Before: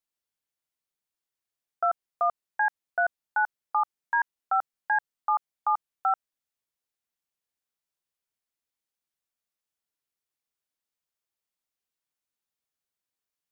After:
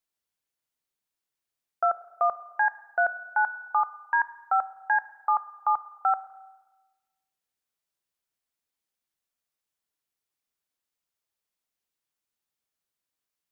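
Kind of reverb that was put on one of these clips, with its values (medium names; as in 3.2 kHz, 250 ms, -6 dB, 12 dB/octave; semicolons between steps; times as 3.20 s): spring tank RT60 1.2 s, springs 31/52 ms, chirp 35 ms, DRR 15 dB; trim +1.5 dB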